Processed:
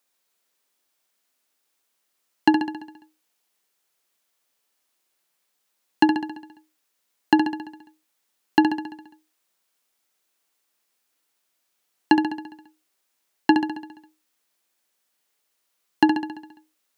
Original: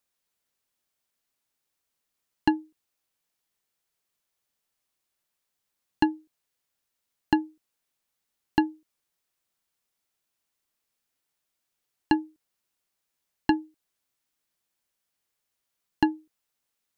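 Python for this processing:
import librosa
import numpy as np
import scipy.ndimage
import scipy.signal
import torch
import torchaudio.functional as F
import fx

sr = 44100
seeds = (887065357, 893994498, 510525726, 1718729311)

y = scipy.signal.sosfilt(scipy.signal.butter(2, 240.0, 'highpass', fs=sr, output='sos'), x)
y = fx.echo_feedback(y, sr, ms=68, feedback_pct=59, wet_db=-7)
y = y * 10.0 ** (6.5 / 20.0)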